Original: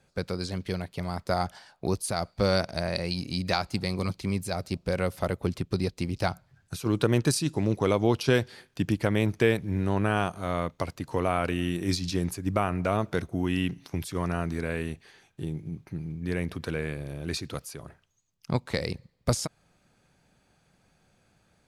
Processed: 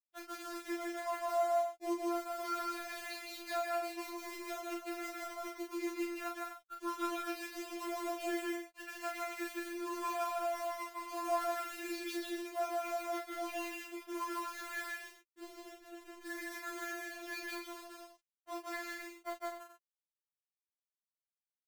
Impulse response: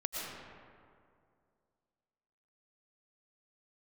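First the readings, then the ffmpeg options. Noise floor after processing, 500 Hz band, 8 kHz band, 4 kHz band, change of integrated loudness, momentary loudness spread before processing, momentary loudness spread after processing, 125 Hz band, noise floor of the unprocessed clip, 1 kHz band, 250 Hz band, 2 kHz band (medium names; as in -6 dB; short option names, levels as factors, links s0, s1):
under -85 dBFS, -10.0 dB, -10.0 dB, -12.5 dB, -10.5 dB, 11 LU, 10 LU, under -40 dB, -68 dBFS, -4.5 dB, -13.0 dB, -7.5 dB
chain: -filter_complex "[0:a]lowpass=2000,afftdn=nr=19:nf=-47,highpass=860,adynamicequalizer=threshold=0.00355:dfrequency=1300:dqfactor=2.2:tfrequency=1300:tqfactor=2.2:attack=5:release=100:ratio=0.375:range=2.5:mode=cutabove:tftype=bell,acompressor=threshold=0.00282:ratio=2.5,afreqshift=-32,acrusher=bits=8:mix=0:aa=0.000001,asplit=2[s0][s1];[s1]adelay=35,volume=0.631[s2];[s0][s2]amix=inputs=2:normalize=0,aecho=1:1:157.4|247.8:0.891|0.398,afftfilt=real='re*4*eq(mod(b,16),0)':imag='im*4*eq(mod(b,16),0)':win_size=2048:overlap=0.75,volume=2.51"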